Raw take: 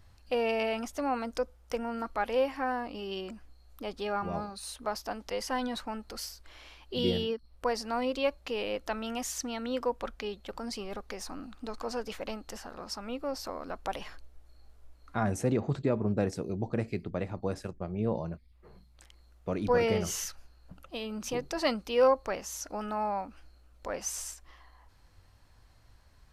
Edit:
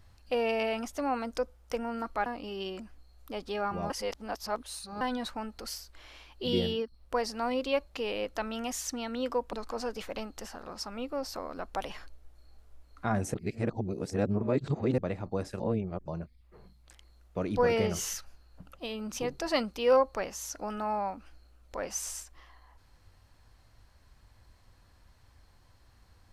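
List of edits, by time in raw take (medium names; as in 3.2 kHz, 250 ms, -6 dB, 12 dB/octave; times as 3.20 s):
2.26–2.77 s: delete
4.41–5.52 s: reverse
10.04–11.64 s: delete
15.45–17.09 s: reverse
17.71–18.19 s: reverse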